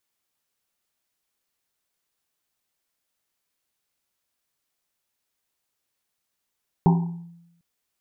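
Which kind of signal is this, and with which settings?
drum after Risset length 0.75 s, pitch 170 Hz, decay 0.90 s, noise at 860 Hz, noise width 220 Hz, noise 20%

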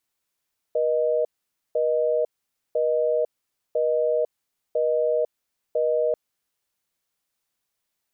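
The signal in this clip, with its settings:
call progress tone busy tone, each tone −22 dBFS 5.39 s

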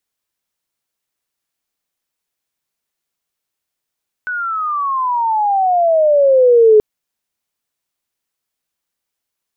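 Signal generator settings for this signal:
glide logarithmic 1,500 Hz → 420 Hz −18.5 dBFS → −4.5 dBFS 2.53 s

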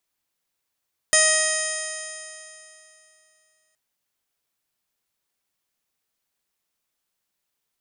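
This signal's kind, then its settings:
stiff-string partials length 2.62 s, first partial 627 Hz, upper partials −7.5/3.5/−7.5/−6/−10/−16.5/−1/−12/0/1/−18/−6/4 dB, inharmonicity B 0.00042, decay 2.85 s, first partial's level −22.5 dB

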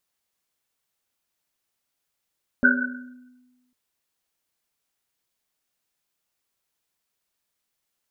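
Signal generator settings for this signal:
drum after Risset, pitch 250 Hz, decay 1.32 s, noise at 1,500 Hz, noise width 100 Hz, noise 60%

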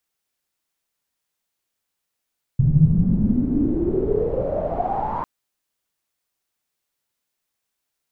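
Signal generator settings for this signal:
filter sweep on noise pink, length 2.65 s lowpass, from 130 Hz, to 990 Hz, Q 11, exponential, gain ramp −11.5 dB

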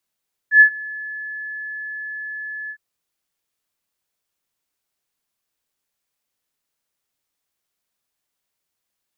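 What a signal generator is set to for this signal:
note with an ADSR envelope sine 1,720 Hz, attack 95 ms, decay 88 ms, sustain −23.5 dB, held 2.19 s, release 69 ms −4 dBFS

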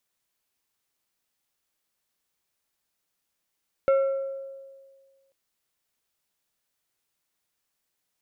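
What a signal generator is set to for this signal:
struck glass plate, length 1.44 s, lowest mode 543 Hz, decay 1.71 s, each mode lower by 11.5 dB, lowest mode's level −16 dB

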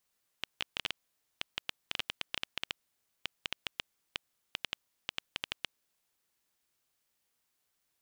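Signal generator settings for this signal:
Geiger counter clicks 6.8 per second −14.5 dBFS 5.56 s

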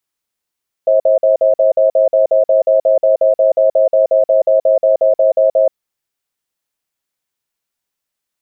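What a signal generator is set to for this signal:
tone pair in a cadence 534 Hz, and 641 Hz, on 0.13 s, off 0.05 s, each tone −10.5 dBFS 4.81 s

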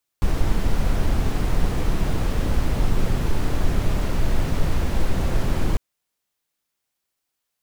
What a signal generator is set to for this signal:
noise brown, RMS −18 dBFS 5.55 s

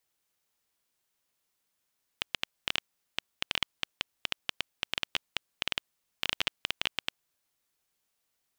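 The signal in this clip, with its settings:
Geiger counter clicks 8.7 per second −9.5 dBFS 5.28 s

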